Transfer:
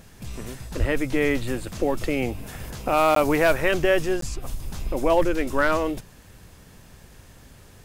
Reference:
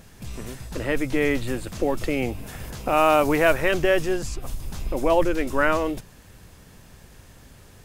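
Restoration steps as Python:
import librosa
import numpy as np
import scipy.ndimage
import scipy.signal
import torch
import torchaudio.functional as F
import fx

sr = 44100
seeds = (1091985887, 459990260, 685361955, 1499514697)

y = fx.fix_declip(x, sr, threshold_db=-10.5)
y = fx.fix_deplosive(y, sr, at_s=(0.79,))
y = fx.fix_interpolate(y, sr, at_s=(3.15, 4.21), length_ms=13.0)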